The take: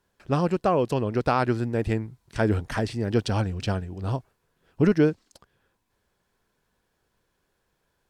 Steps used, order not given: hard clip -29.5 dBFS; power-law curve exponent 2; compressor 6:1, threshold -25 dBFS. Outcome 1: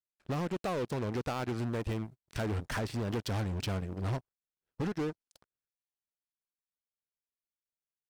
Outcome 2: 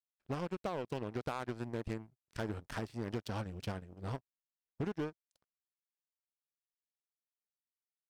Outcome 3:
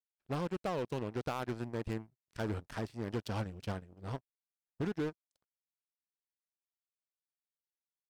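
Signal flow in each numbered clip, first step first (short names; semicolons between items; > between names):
compressor > hard clip > power-law curve; compressor > power-law curve > hard clip; power-law curve > compressor > hard clip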